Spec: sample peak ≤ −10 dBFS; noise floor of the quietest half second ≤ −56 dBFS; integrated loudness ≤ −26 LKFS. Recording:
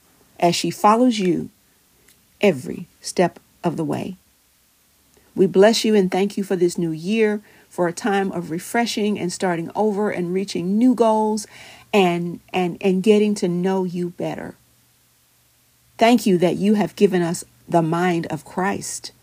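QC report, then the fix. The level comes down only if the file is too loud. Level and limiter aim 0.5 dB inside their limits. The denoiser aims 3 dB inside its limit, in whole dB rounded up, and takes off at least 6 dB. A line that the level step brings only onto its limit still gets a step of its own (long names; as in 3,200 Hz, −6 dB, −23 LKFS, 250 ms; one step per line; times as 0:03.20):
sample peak −3.0 dBFS: out of spec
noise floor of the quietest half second −59 dBFS: in spec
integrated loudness −20.0 LKFS: out of spec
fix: level −6.5 dB
brickwall limiter −10.5 dBFS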